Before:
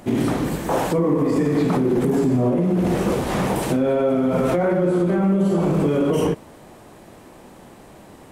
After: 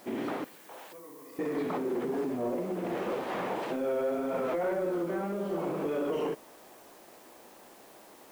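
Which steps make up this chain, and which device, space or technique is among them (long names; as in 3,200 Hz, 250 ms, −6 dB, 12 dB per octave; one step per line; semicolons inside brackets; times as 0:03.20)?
tape answering machine (band-pass filter 360–3,100 Hz; soft clipping −15 dBFS, distortion −21 dB; tape wow and flutter; white noise bed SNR 26 dB)
0:00.44–0:01.39: first-order pre-emphasis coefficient 0.9
level −7.5 dB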